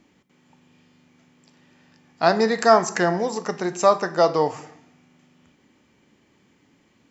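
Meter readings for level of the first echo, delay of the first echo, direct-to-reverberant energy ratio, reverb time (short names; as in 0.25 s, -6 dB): none, none, 10.5 dB, 0.70 s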